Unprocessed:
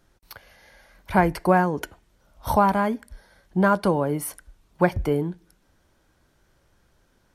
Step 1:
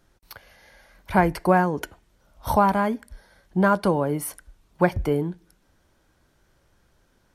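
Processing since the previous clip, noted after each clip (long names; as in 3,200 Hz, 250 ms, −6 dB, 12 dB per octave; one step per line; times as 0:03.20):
no processing that can be heard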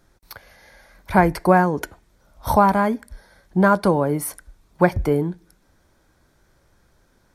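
parametric band 2,900 Hz −7.5 dB 0.24 octaves
level +3.5 dB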